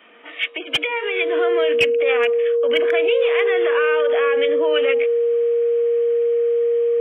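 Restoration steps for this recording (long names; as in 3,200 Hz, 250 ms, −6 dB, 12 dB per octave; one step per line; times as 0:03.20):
notch filter 470 Hz, Q 30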